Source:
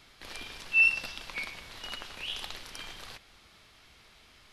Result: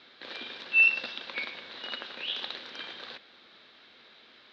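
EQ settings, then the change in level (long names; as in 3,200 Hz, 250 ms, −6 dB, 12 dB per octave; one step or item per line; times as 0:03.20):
loudspeaker in its box 230–4,300 Hz, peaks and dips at 240 Hz +7 dB, 360 Hz +4 dB, 520 Hz +7 dB, 1,600 Hz +6 dB, 3,800 Hz +9 dB
0.0 dB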